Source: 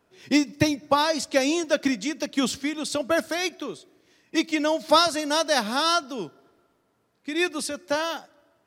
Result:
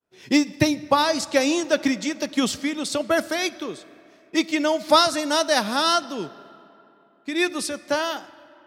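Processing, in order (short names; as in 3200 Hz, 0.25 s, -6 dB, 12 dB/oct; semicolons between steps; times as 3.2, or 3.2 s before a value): expander -56 dBFS; digital reverb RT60 3.2 s, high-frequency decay 0.6×, pre-delay 5 ms, DRR 18 dB; gain +2 dB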